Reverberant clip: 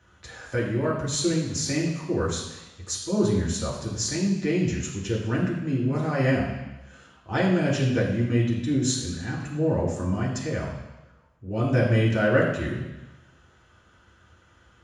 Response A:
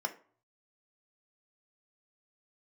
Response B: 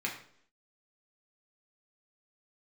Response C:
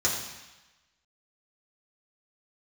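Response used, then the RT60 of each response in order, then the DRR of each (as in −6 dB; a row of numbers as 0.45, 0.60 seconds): C; 0.50, 0.65, 1.1 seconds; 5.0, −2.5, −5.0 decibels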